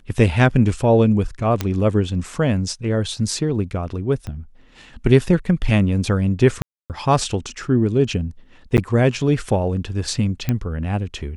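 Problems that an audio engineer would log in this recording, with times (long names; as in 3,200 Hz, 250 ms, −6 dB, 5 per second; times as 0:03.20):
0:01.61: click −7 dBFS
0:04.27: click −18 dBFS
0:06.62–0:06.90: drop-out 278 ms
0:08.77–0:08.78: drop-out 9.5 ms
0:10.49: click −8 dBFS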